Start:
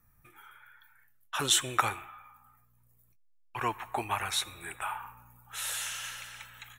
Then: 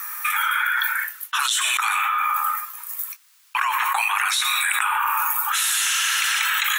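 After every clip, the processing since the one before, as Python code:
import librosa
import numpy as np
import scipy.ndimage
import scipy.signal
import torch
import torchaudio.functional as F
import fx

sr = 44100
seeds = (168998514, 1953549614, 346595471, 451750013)

y = scipy.signal.sosfilt(scipy.signal.butter(6, 1000.0, 'highpass', fs=sr, output='sos'), x)
y = fx.env_flatten(y, sr, amount_pct=100)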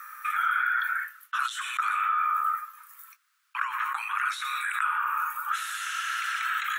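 y = fx.ladder_highpass(x, sr, hz=1200.0, resonance_pct=65)
y = fx.tilt_eq(y, sr, slope=-2.0)
y = y * 10.0 ** (-1.5 / 20.0)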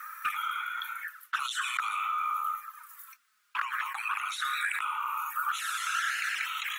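y = fx.quant_companded(x, sr, bits=8)
y = fx.env_flanger(y, sr, rest_ms=5.1, full_db=-25.5)
y = y * 10.0 ** (3.5 / 20.0)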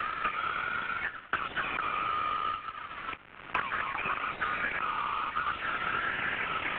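y = fx.cvsd(x, sr, bps=16000)
y = fx.band_squash(y, sr, depth_pct=100)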